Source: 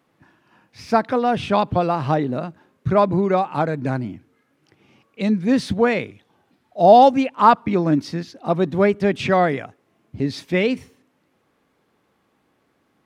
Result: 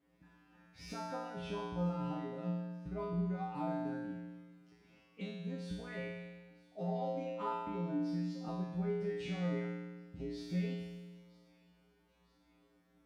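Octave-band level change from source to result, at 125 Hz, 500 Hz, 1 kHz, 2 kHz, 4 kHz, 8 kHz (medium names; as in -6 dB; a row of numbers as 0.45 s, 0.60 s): -14.0 dB, -22.5 dB, -25.5 dB, -22.0 dB, -20.0 dB, no reading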